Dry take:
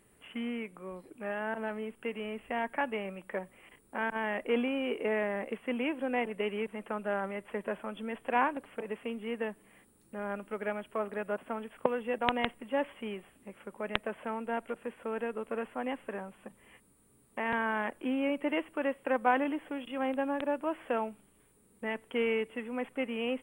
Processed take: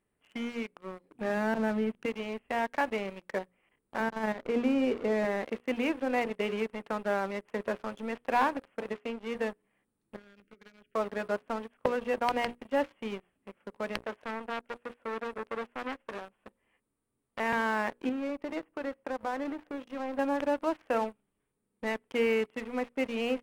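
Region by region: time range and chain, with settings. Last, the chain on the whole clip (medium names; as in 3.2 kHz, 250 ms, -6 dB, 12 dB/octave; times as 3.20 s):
1.12–2.06 s: peaking EQ 130 Hz +11.5 dB 2.2 oct + hum notches 50/100/150/200 Hz
4.00–5.25 s: level held to a coarse grid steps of 11 dB + tilt EQ -2.5 dB/octave
8.93–9.35 s: high-pass 160 Hz 6 dB/octave + distance through air 62 m
10.16–10.95 s: Butterworth band-stop 850 Hz, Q 1.1 + compression 5:1, threshold -43 dBFS + static phaser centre 2.3 kHz, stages 4
14.01–17.40 s: peaking EQ 170 Hz -12.5 dB 0.25 oct + hum notches 60/120/180/240/300/360/420 Hz + transformer saturation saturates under 1.6 kHz
18.09–20.19 s: peaking EQ 4.2 kHz -9.5 dB 1.8 oct + compression 2.5:1, threshold -36 dBFS
whole clip: low-pass 3.5 kHz 6 dB/octave; hum notches 60/120/180/240/300/360/420/480/540 Hz; waveshaping leveller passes 3; trim -8 dB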